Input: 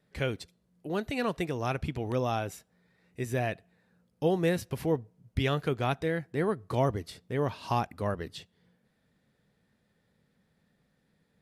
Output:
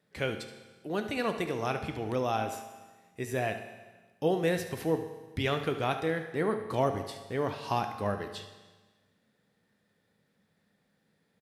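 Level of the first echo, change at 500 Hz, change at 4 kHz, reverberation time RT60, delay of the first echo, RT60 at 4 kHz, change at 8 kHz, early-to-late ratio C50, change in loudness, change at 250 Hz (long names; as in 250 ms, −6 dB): −14.0 dB, 0.0 dB, +1.0 dB, 1.3 s, 73 ms, 1.3 s, +1.0 dB, 8.0 dB, −0.5 dB, −1.5 dB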